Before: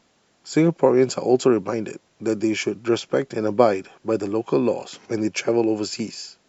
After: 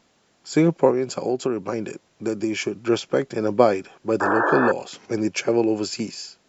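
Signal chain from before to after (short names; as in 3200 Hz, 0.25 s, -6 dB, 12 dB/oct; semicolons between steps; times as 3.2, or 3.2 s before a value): 0.9–2.77 compressor 5:1, threshold -20 dBFS, peak gain reduction 8.5 dB; 4.2–4.72 painted sound noise 290–1800 Hz -21 dBFS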